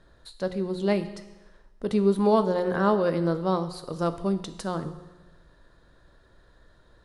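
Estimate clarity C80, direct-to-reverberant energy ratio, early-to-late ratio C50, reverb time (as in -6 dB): 14.0 dB, 10.0 dB, 12.5 dB, 1.1 s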